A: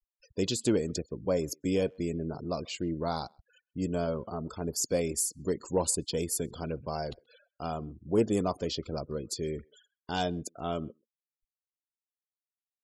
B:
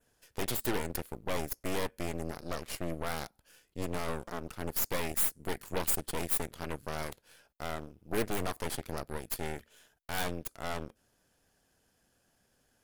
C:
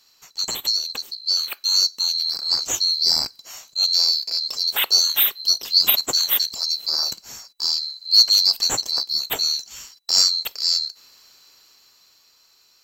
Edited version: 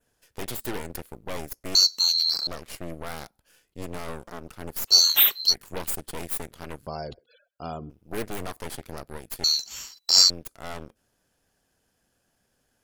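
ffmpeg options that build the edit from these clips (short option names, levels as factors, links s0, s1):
-filter_complex "[2:a]asplit=3[s0][s1][s2];[1:a]asplit=5[s3][s4][s5][s6][s7];[s3]atrim=end=1.752[s8];[s0]atrim=start=1.748:end=2.472[s9];[s4]atrim=start=2.468:end=4.93[s10];[s1]atrim=start=4.87:end=5.55[s11];[s5]atrim=start=5.49:end=6.872[s12];[0:a]atrim=start=6.868:end=7.902[s13];[s6]atrim=start=7.898:end=9.442[s14];[s2]atrim=start=9.438:end=10.302[s15];[s7]atrim=start=10.298[s16];[s8][s9]acrossfade=d=0.004:c1=hsin:c2=hsin[s17];[s17][s10]acrossfade=d=0.004:c1=hsin:c2=hsin[s18];[s18][s11]acrossfade=d=0.06:c1=tri:c2=tri[s19];[s19][s12]acrossfade=d=0.06:c1=tri:c2=tri[s20];[s20][s13]acrossfade=d=0.004:c1=hsin:c2=hsin[s21];[s21][s14]acrossfade=d=0.004:c1=hsin:c2=hsin[s22];[s22][s15]acrossfade=d=0.004:c1=hsin:c2=hsin[s23];[s23][s16]acrossfade=d=0.004:c1=hsin:c2=hsin"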